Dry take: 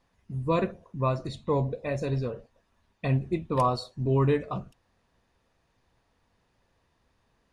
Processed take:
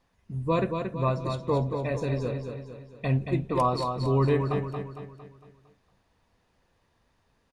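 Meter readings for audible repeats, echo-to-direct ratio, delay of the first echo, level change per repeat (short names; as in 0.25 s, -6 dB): 5, -5.0 dB, 0.228 s, -6.5 dB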